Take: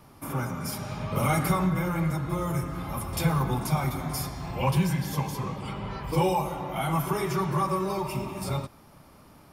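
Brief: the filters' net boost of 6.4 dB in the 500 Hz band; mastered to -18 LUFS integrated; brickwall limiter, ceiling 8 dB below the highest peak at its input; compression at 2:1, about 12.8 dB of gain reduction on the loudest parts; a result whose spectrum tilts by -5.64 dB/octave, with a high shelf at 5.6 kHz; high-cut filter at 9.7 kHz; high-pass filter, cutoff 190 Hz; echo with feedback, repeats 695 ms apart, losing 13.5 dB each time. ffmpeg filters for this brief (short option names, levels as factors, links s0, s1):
-af "highpass=190,lowpass=9700,equalizer=f=500:t=o:g=8.5,highshelf=f=5600:g=-7.5,acompressor=threshold=0.01:ratio=2,alimiter=level_in=1.88:limit=0.0631:level=0:latency=1,volume=0.531,aecho=1:1:695|1390:0.211|0.0444,volume=11.2"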